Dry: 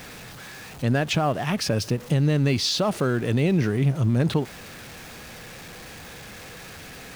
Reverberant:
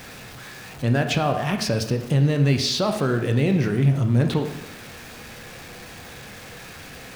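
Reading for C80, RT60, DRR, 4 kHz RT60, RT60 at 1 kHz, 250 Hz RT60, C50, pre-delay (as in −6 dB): 10.5 dB, 0.85 s, 4.5 dB, 0.80 s, 0.85 s, 0.80 s, 8.5 dB, 6 ms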